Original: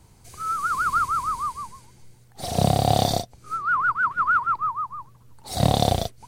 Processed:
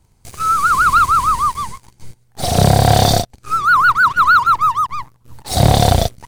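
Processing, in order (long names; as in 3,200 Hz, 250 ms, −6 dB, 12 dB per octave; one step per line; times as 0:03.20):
low-shelf EQ 70 Hz +7.5 dB
leveller curve on the samples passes 3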